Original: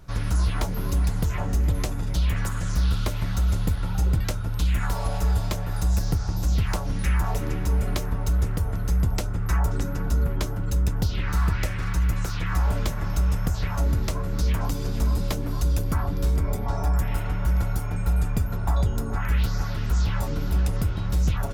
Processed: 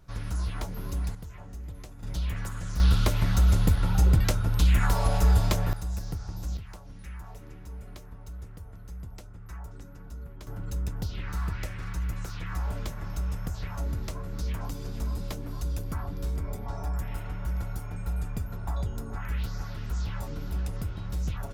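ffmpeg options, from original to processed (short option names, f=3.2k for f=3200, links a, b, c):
-af "asetnsamples=n=441:p=0,asendcmd='1.15 volume volume -17.5dB;2.03 volume volume -7.5dB;2.8 volume volume 2dB;5.73 volume volume -10dB;6.57 volume volume -18.5dB;10.47 volume volume -8.5dB',volume=-8dB"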